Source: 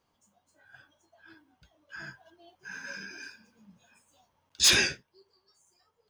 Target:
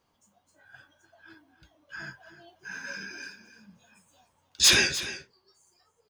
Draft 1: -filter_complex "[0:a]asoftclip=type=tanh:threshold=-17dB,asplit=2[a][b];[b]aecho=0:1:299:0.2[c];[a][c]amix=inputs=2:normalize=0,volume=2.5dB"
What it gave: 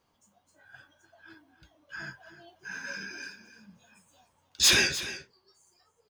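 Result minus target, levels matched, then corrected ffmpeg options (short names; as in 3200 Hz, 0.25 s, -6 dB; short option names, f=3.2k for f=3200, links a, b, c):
soft clip: distortion +15 dB
-filter_complex "[0:a]asoftclip=type=tanh:threshold=-8dB,asplit=2[a][b];[b]aecho=0:1:299:0.2[c];[a][c]amix=inputs=2:normalize=0,volume=2.5dB"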